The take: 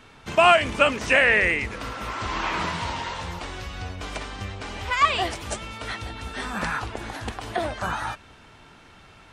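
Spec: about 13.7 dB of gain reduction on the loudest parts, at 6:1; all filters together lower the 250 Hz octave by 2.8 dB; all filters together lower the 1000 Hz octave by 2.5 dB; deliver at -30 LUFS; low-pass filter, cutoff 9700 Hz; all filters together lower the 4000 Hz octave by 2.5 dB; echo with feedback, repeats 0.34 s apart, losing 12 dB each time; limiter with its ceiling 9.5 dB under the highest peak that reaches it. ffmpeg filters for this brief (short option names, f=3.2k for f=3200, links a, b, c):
-af "lowpass=9.7k,equalizer=f=250:t=o:g=-3.5,equalizer=f=1k:t=o:g=-3,equalizer=f=4k:t=o:g=-3.5,acompressor=threshold=-29dB:ratio=6,alimiter=level_in=3dB:limit=-24dB:level=0:latency=1,volume=-3dB,aecho=1:1:340|680|1020:0.251|0.0628|0.0157,volume=6.5dB"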